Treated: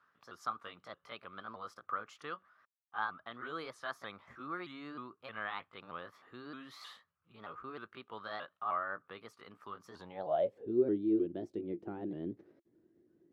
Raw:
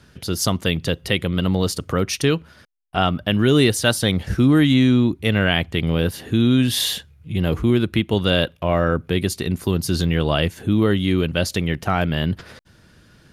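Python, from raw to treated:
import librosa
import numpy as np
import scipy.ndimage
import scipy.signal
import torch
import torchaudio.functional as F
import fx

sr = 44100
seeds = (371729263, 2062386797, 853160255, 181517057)

y = fx.pitch_ramps(x, sr, semitones=3.5, every_ms=311)
y = fx.filter_sweep_bandpass(y, sr, from_hz=1200.0, to_hz=340.0, start_s=9.84, end_s=10.87, q=7.9)
y = y * 10.0 ** (-2.0 / 20.0)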